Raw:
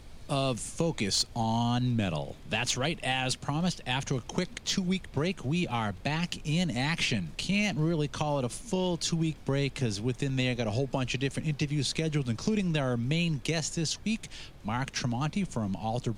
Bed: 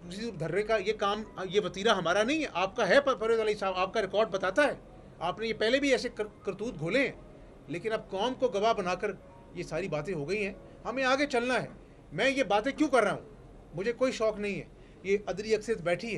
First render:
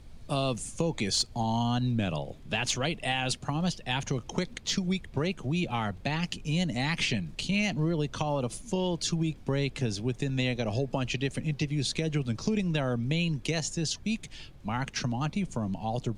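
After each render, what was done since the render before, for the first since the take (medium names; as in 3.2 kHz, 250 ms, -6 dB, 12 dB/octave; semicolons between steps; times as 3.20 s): noise reduction 6 dB, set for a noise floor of -48 dBFS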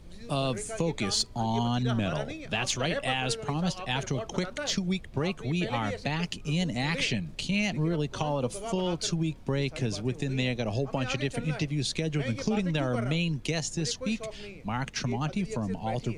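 add bed -11 dB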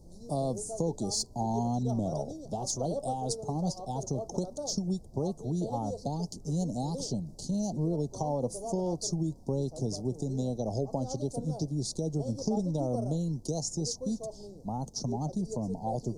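elliptic band-stop 810–5200 Hz, stop band 80 dB; bass shelf 120 Hz -6 dB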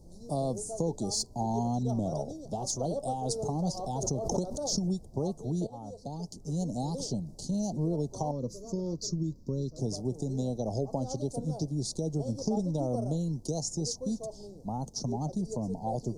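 3.25–5.10 s: swell ahead of each attack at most 37 dB/s; 5.67–6.78 s: fade in, from -13 dB; 8.31–9.79 s: static phaser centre 2.9 kHz, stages 6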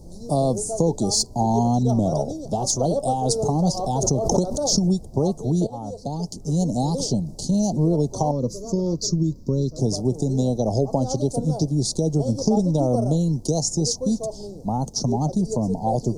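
trim +10.5 dB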